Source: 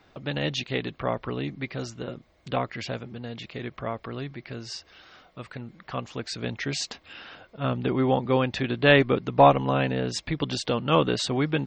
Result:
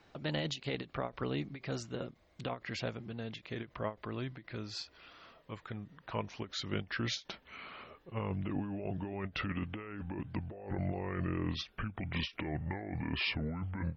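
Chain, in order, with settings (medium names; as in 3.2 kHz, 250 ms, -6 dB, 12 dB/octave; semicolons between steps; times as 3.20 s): gliding tape speed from 107% -> 60%; compressor with a negative ratio -28 dBFS, ratio -1; endings held to a fixed fall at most 290 dB/s; trim -8.5 dB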